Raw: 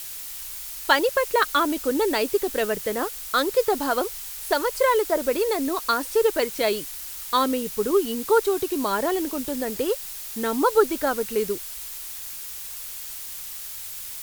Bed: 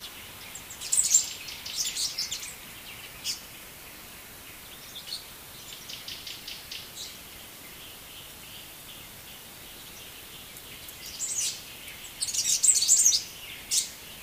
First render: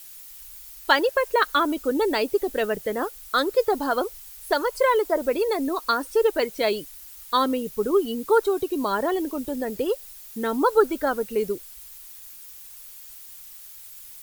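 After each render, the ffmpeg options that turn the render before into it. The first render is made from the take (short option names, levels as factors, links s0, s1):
-af "afftdn=nr=11:nf=-36"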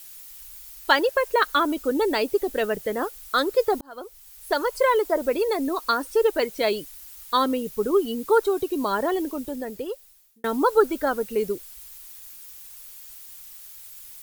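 -filter_complex "[0:a]asplit=3[s0][s1][s2];[s0]atrim=end=3.81,asetpts=PTS-STARTPTS,afade=t=out:st=3.806:d=0.004:c=hsin[s3];[s1]atrim=start=3.81:end=10.44,asetpts=PTS-STARTPTS,afade=t=in:d=0.83,afade=t=out:st=5.4:d=1.23[s4];[s2]atrim=start=10.44,asetpts=PTS-STARTPTS,afade=t=in:d=0.004:c=hsin[s5];[s3][s4][s5]concat=n=3:v=0:a=1"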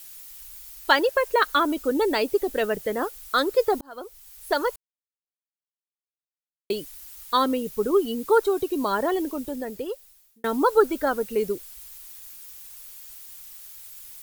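-filter_complex "[0:a]asplit=3[s0][s1][s2];[s0]atrim=end=4.76,asetpts=PTS-STARTPTS,afade=t=out:st=4.756:d=0.004:c=hsin[s3];[s1]atrim=start=4.76:end=6.7,asetpts=PTS-STARTPTS,volume=0[s4];[s2]atrim=start=6.7,asetpts=PTS-STARTPTS,afade=t=in:d=0.004:c=hsin[s5];[s3][s4][s5]concat=n=3:v=0:a=1"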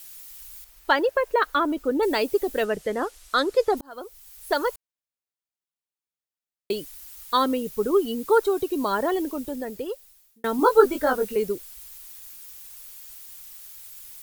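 -filter_complex "[0:a]asettb=1/sr,asplit=3[s0][s1][s2];[s0]atrim=end=0.644[s3];[s1]atrim=start=0.64:end=2.03,asetpts=PTS-STARTPTS,afade=t=in:d=0.004:c=qsin,afade=t=out:st=1.386:d=0.004:c=qsin,highshelf=f=3200:g=-11[s4];[s2]atrim=start=2.026[s5];[s3][s4]acrossfade=d=0.004:c1=hsin:c2=qsin[s6];[s6][s5]acrossfade=d=0.004:c1=qsin:c2=hsin,asettb=1/sr,asplit=3[s7][s8][s9];[s7]atrim=end=2.644[s10];[s8]atrim=start=2.64:end=3.77,asetpts=PTS-STARTPTS,afade=t=in:d=0.004:c=qsin,afade=t=out:st=1.126:d=0.004:c=qsin,lowpass=9000[s11];[s9]atrim=start=3.766[s12];[s10][s11]acrossfade=d=0.004:c1=hsin:c2=qsin[s13];[s13][s12]acrossfade=d=0.004:c1=qsin:c2=hsin,asettb=1/sr,asplit=3[s14][s15][s16];[s14]atrim=end=10.574[s17];[s15]atrim=start=10.57:end=11.36,asetpts=PTS-STARTPTS,afade=t=in:d=0.004:c=qsin,afade=t=out:st=0.786:d=0.004:c=qsin,asplit=2[s18][s19];[s19]adelay=20,volume=0.708[s20];[s18][s20]amix=inputs=2:normalize=0,atrim=end_sample=34839[s21];[s16]atrim=start=11.356[s22];[s17][s21]acrossfade=d=0.004:c1=hsin:c2=qsin[s23];[s23][s22]acrossfade=d=0.004:c1=qsin:c2=hsin"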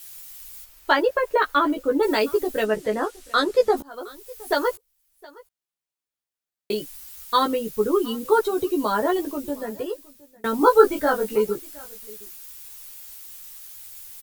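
-filter_complex "[0:a]asplit=2[s0][s1];[s1]adelay=14,volume=0.708[s2];[s0][s2]amix=inputs=2:normalize=0,aecho=1:1:716:0.0708"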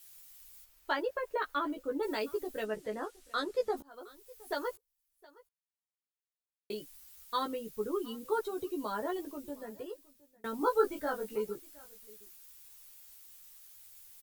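-af "volume=0.211"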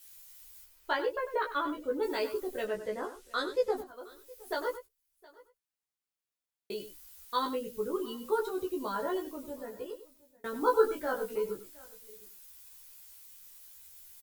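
-filter_complex "[0:a]asplit=2[s0][s1];[s1]adelay=16,volume=0.631[s2];[s0][s2]amix=inputs=2:normalize=0,aecho=1:1:97:0.251"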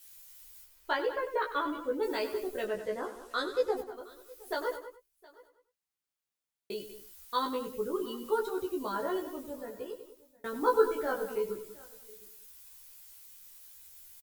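-filter_complex "[0:a]asplit=2[s0][s1];[s1]adelay=192.4,volume=0.224,highshelf=f=4000:g=-4.33[s2];[s0][s2]amix=inputs=2:normalize=0"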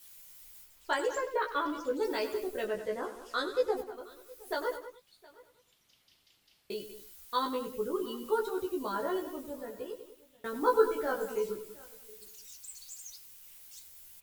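-filter_complex "[1:a]volume=0.0422[s0];[0:a][s0]amix=inputs=2:normalize=0"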